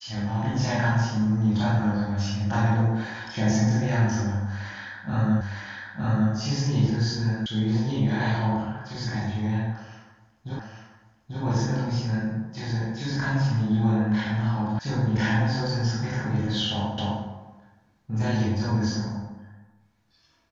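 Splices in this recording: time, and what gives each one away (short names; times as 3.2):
5.41 repeat of the last 0.91 s
7.46 sound cut off
10.59 repeat of the last 0.84 s
14.79 sound cut off
16.98 repeat of the last 0.26 s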